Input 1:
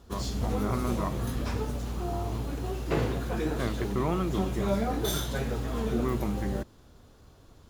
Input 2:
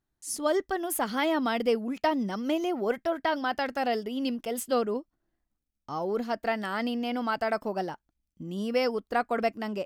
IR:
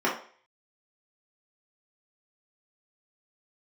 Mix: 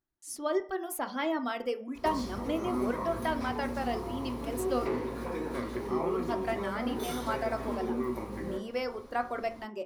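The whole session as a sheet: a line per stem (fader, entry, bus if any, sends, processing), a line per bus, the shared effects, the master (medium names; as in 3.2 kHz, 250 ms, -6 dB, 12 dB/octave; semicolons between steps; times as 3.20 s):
-1.0 dB, 1.95 s, send -10.5 dB, rippled EQ curve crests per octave 0.9, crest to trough 7 dB; compression, threshold -36 dBFS, peak gain reduction 13.5 dB
-7.5 dB, 0.00 s, send -18 dB, reverb removal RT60 0.86 s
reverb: on, RT60 0.45 s, pre-delay 3 ms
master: none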